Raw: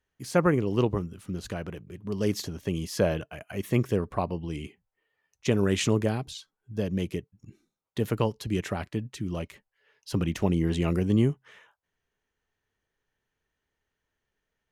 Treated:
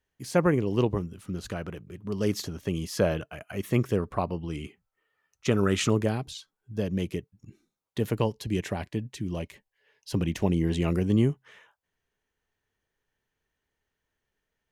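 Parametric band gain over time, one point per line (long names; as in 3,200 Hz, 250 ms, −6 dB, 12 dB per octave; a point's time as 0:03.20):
parametric band 1,300 Hz 0.24 octaves
−4.5 dB
from 0:01.22 +4 dB
from 0:04.34 +11.5 dB
from 0:05.90 0 dB
from 0:08.10 −9.5 dB
from 0:10.81 −1.5 dB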